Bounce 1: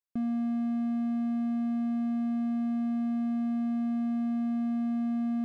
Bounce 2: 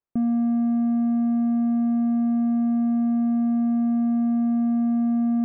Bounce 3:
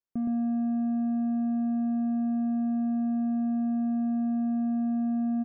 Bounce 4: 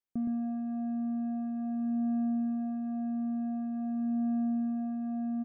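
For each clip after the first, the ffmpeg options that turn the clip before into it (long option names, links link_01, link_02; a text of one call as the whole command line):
ffmpeg -i in.wav -af "lowpass=1100,volume=8dB" out.wav
ffmpeg -i in.wav -af "aecho=1:1:118:0.708,volume=-7dB" out.wav
ffmpeg -i in.wav -af "aphaser=in_gain=1:out_gain=1:delay=3.3:decay=0.28:speed=0.46:type=sinusoidal,volume=-5dB" out.wav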